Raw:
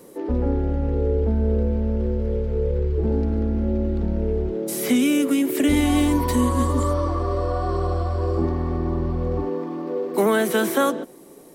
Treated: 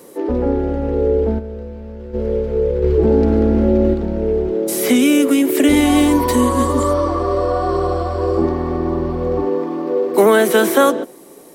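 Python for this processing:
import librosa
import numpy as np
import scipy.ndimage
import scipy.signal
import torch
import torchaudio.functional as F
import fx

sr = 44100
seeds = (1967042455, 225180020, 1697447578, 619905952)

y = fx.low_shelf(x, sr, hz=230.0, db=-8.5)
y = fx.comb_fb(y, sr, f0_hz=81.0, decay_s=0.54, harmonics='all', damping=0.0, mix_pct=80, at=(1.38, 2.13), fade=0.02)
y = fx.dynamic_eq(y, sr, hz=410.0, q=0.83, threshold_db=-35.0, ratio=4.0, max_db=4)
y = fx.env_flatten(y, sr, amount_pct=50, at=(2.82, 3.93), fade=0.02)
y = y * 10.0 ** (6.5 / 20.0)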